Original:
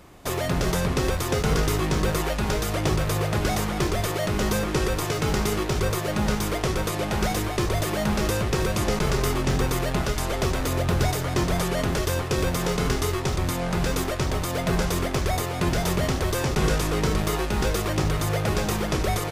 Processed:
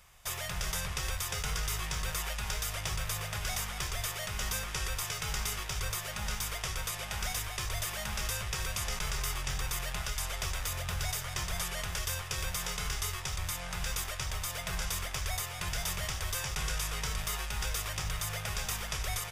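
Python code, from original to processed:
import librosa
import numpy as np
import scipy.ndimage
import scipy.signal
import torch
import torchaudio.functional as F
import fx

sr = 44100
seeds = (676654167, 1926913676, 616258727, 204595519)

p1 = fx.tone_stack(x, sr, knobs='10-0-10')
p2 = fx.notch(p1, sr, hz=4200.0, q=8.0)
p3 = fx.over_compress(p2, sr, threshold_db=-31.0, ratio=-1.0)
p4 = p2 + F.gain(torch.from_numpy(p3), -2.0).numpy()
y = F.gain(torch.from_numpy(p4), -7.0).numpy()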